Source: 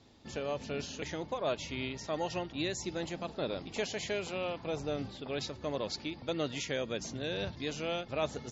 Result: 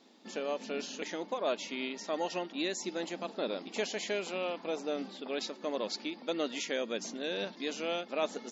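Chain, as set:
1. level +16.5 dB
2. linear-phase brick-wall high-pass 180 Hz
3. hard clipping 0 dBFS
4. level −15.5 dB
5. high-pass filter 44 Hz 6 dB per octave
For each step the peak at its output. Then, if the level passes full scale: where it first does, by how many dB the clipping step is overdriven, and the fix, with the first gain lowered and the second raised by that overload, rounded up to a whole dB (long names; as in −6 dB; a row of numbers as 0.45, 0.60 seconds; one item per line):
−3.5, −3.5, −3.5, −19.0, −19.0 dBFS
no step passes full scale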